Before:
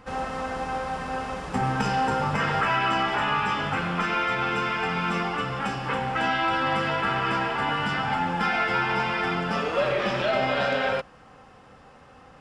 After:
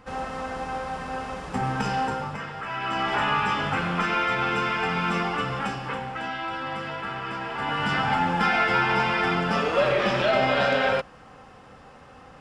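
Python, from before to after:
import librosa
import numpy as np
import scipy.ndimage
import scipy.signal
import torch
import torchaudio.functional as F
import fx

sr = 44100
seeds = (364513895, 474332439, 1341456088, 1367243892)

y = fx.gain(x, sr, db=fx.line((2.02, -1.5), (2.55, -12.0), (3.14, 1.0), (5.55, 1.0), (6.22, -7.0), (7.38, -7.0), (7.94, 2.5)))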